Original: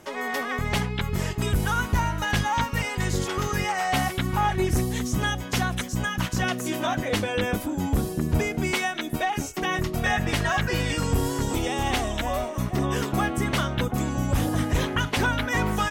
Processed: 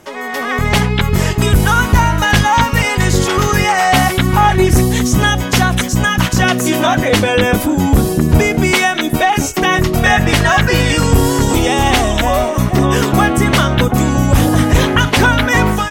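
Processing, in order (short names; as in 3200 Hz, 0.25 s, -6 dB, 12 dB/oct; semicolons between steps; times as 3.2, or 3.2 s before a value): in parallel at -0.5 dB: limiter -23 dBFS, peak gain reduction 8 dB; on the sum: AGC gain up to 11.5 dB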